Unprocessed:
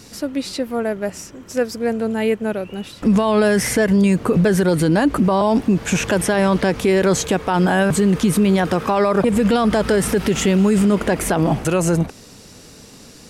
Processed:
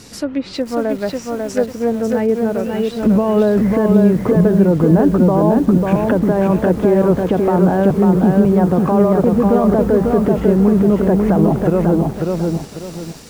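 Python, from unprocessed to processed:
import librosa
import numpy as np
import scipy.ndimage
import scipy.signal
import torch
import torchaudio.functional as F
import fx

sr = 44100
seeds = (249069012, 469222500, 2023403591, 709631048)

y = fx.env_lowpass_down(x, sr, base_hz=810.0, full_db=-15.5)
y = fx.echo_crushed(y, sr, ms=545, feedback_pct=35, bits=7, wet_db=-3.0)
y = y * librosa.db_to_amplitude(2.5)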